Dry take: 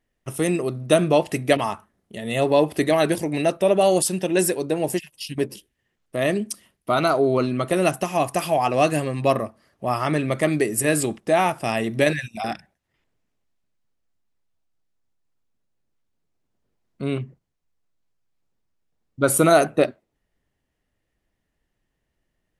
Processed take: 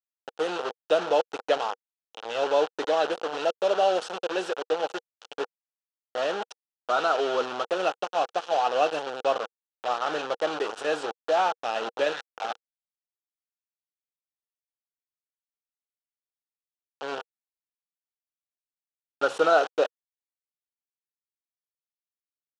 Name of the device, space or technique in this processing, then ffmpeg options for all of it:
hand-held game console: -af "acrusher=bits=3:mix=0:aa=0.000001,highpass=450,equalizer=frequency=480:width_type=q:width=4:gain=10,equalizer=frequency=810:width_type=q:width=4:gain=8,equalizer=frequency=1400:width_type=q:width=4:gain=9,equalizer=frequency=2100:width_type=q:width=4:gain=-10,equalizer=frequency=3000:width_type=q:width=4:gain=5,equalizer=frequency=4800:width_type=q:width=4:gain=-4,lowpass=frequency=5500:width=0.5412,lowpass=frequency=5500:width=1.3066,volume=-8.5dB"

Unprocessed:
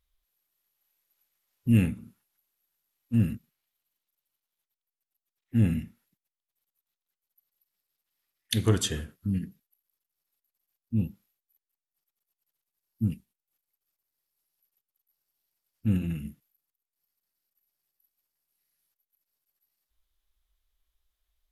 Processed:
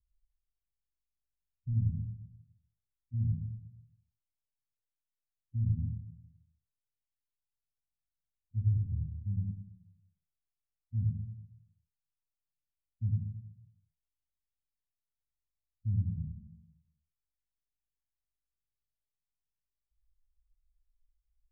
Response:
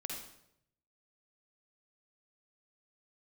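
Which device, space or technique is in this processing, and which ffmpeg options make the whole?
club heard from the street: -filter_complex "[0:a]alimiter=limit=-18.5dB:level=0:latency=1,lowpass=frequency=130:width=0.5412,lowpass=frequency=130:width=1.3066[link_01];[1:a]atrim=start_sample=2205[link_02];[link_01][link_02]afir=irnorm=-1:irlink=0,volume=2dB"

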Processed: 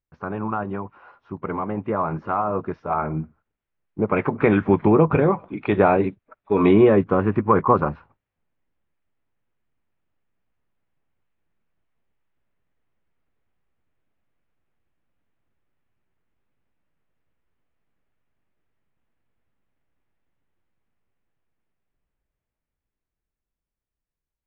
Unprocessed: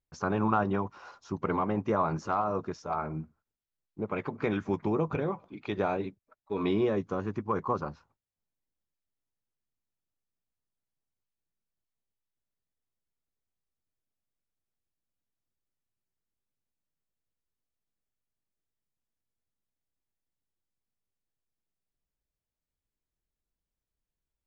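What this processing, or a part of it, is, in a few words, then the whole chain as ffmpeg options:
action camera in a waterproof case: -af "lowpass=frequency=2600:width=0.5412,lowpass=frequency=2600:width=1.3066,dynaudnorm=framelen=350:gausssize=17:maxgain=16dB" -ar 16000 -c:a aac -b:a 48k

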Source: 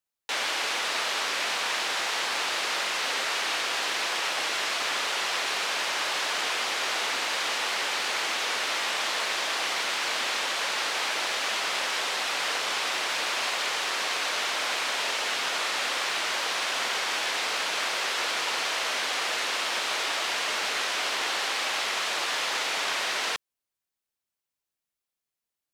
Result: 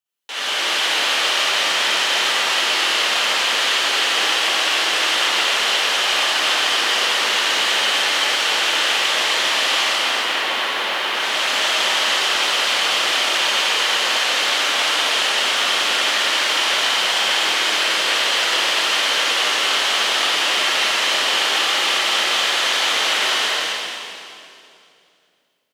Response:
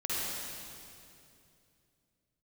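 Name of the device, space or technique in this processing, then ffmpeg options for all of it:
stadium PA: -filter_complex "[0:a]asettb=1/sr,asplit=3[link_01][link_02][link_03];[link_01]atrim=end=9.834[link_04];[link_02]atrim=start=9.83:end=11.15,asetpts=PTS-STARTPTS,afade=type=in:duration=0.004:curve=qsin,afade=type=out:start_time=1.316:duration=0.004:curve=qsin,equalizer=frequency=7200:width_type=o:width=1.7:gain=-12[link_05];[link_03]atrim=start=11.146[link_06];[link_04][link_05]acrossfade=duration=0.004:curve1=hsin:curve2=qsin[link_07];[link_07][link_06]acrossfade=duration=0.004:curve1=qsin:curve2=hsin,highpass=frequency=160:poles=1,equalizer=frequency=3100:width_type=o:width=0.27:gain=7,aecho=1:1:207|268.2:0.282|0.631[link_08];[1:a]atrim=start_sample=2205[link_09];[link_08][link_09]afir=irnorm=-1:irlink=0"

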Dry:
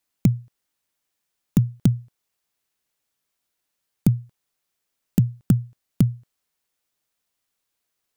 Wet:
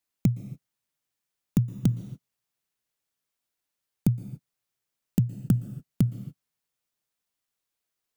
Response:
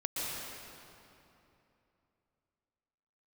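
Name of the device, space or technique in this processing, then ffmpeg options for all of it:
keyed gated reverb: -filter_complex "[0:a]asplit=3[link_01][link_02][link_03];[1:a]atrim=start_sample=2205[link_04];[link_02][link_04]afir=irnorm=-1:irlink=0[link_05];[link_03]apad=whole_len=360169[link_06];[link_05][link_06]sidechaingate=range=-57dB:threshold=-45dB:ratio=16:detection=peak,volume=-15.5dB[link_07];[link_01][link_07]amix=inputs=2:normalize=0,volume=-6dB"

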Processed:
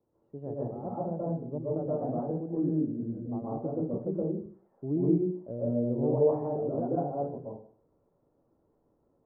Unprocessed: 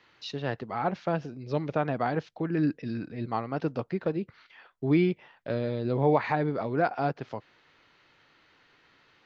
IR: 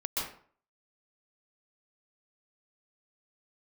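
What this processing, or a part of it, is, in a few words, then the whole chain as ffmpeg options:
next room: -filter_complex "[0:a]lowpass=frequency=640:width=0.5412,lowpass=frequency=640:width=1.3066[link_01];[1:a]atrim=start_sample=2205[link_02];[link_01][link_02]afir=irnorm=-1:irlink=0,volume=-5.5dB"

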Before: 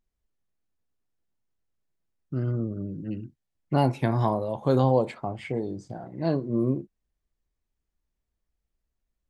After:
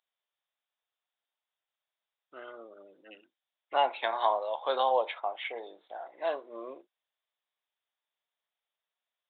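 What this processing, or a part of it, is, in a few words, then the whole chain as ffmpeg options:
musical greeting card: -af "aresample=8000,aresample=44100,highpass=frequency=630:width=0.5412,highpass=frequency=630:width=1.3066,equalizer=frequency=3600:width_type=o:width=0.46:gain=9.5,volume=2dB"

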